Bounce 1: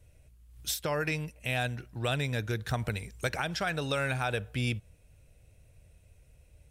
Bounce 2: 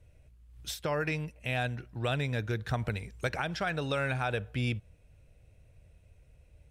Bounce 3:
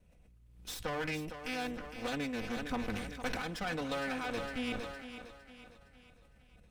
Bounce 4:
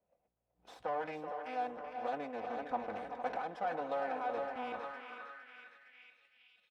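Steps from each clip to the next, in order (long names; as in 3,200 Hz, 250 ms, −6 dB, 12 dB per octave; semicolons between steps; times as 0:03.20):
high-shelf EQ 5,700 Hz −11.5 dB
lower of the sound and its delayed copy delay 4 ms; feedback echo with a high-pass in the loop 459 ms, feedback 47%, high-pass 180 Hz, level −10 dB; level that may fall only so fast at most 42 dB per second; level −4 dB
far-end echo of a speakerphone 380 ms, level −7 dB; noise reduction from a noise print of the clip's start 8 dB; band-pass filter sweep 730 Hz → 3,000 Hz, 0:04.46–0:06.52; level +6 dB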